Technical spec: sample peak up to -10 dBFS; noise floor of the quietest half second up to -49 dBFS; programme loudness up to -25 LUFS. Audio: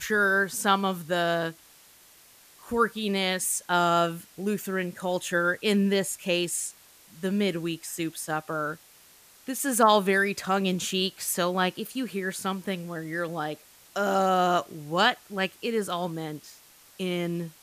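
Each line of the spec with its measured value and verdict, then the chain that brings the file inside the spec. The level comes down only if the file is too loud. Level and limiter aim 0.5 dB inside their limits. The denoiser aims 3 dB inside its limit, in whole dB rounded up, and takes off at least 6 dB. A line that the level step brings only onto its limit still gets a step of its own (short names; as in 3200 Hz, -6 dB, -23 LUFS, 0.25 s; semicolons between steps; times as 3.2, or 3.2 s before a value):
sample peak -8.5 dBFS: fail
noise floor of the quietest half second -55 dBFS: OK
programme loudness -27.0 LUFS: OK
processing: limiter -10.5 dBFS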